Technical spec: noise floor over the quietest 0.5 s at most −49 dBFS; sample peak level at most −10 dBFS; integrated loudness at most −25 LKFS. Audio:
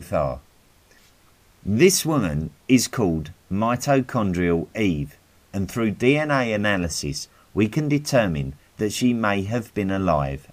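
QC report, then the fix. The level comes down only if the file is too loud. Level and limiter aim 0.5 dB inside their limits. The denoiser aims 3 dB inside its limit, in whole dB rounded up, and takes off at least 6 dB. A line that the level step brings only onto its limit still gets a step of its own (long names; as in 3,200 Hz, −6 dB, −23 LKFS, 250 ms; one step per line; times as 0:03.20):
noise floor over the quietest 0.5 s −56 dBFS: in spec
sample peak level −3.5 dBFS: out of spec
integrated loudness −22.5 LKFS: out of spec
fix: level −3 dB
brickwall limiter −10.5 dBFS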